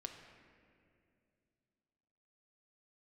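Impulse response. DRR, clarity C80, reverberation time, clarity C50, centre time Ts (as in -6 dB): 3.5 dB, 7.0 dB, 2.4 s, 5.5 dB, 46 ms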